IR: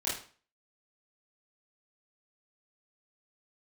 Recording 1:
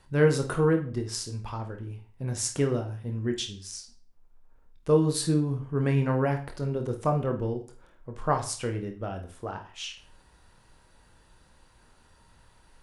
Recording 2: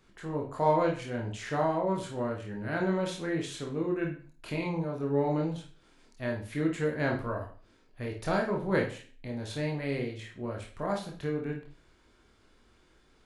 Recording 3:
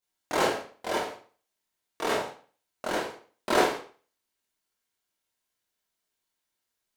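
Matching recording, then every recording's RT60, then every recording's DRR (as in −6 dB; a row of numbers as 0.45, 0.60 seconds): 3; 0.40, 0.40, 0.40 seconds; 4.5, 0.0, −9.5 decibels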